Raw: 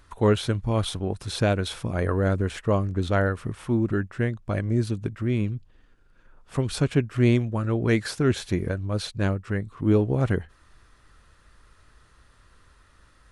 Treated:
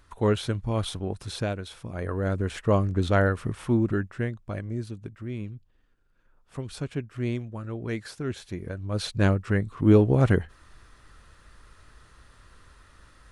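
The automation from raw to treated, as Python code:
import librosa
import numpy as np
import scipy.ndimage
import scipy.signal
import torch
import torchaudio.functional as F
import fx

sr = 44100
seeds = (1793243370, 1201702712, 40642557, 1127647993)

y = fx.gain(x, sr, db=fx.line((1.26, -3.0), (1.67, -10.5), (2.75, 1.0), (3.71, 1.0), (4.88, -9.5), (8.61, -9.5), (9.15, 3.0)))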